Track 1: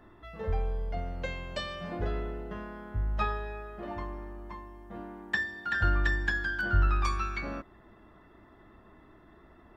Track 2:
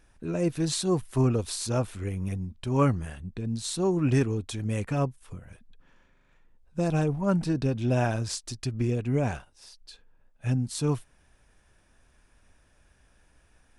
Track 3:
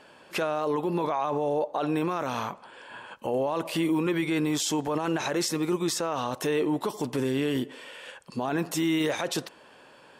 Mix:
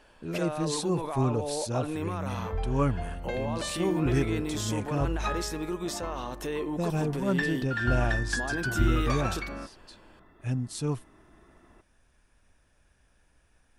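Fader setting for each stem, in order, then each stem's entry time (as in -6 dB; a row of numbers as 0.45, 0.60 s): -1.5, -3.5, -6.5 dB; 2.05, 0.00, 0.00 s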